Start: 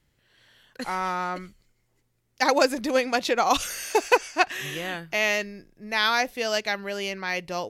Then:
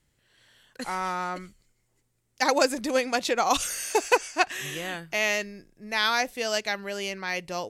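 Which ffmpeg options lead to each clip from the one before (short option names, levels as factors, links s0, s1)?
-af "equalizer=f=8200:w=1.6:g=7.5,volume=0.794"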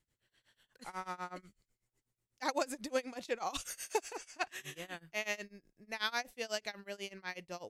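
-af "tremolo=f=8.1:d=0.94,volume=0.376"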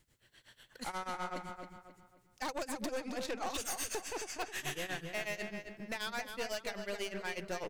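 -filter_complex "[0:a]acompressor=threshold=0.00708:ratio=4,aeval=exprs='(tanh(200*val(0)+0.45)-tanh(0.45))/200':c=same,asplit=2[s0][s1];[s1]adelay=268,lowpass=f=3300:p=1,volume=0.501,asplit=2[s2][s3];[s3]adelay=268,lowpass=f=3300:p=1,volume=0.37,asplit=2[s4][s5];[s5]adelay=268,lowpass=f=3300:p=1,volume=0.37,asplit=2[s6][s7];[s7]adelay=268,lowpass=f=3300:p=1,volume=0.37[s8];[s0][s2][s4][s6][s8]amix=inputs=5:normalize=0,volume=4.22"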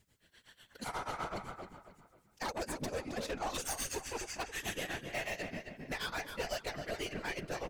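-af "afftfilt=real='hypot(re,im)*cos(2*PI*random(0))':imag='hypot(re,im)*sin(2*PI*random(1))':win_size=512:overlap=0.75,volume=2"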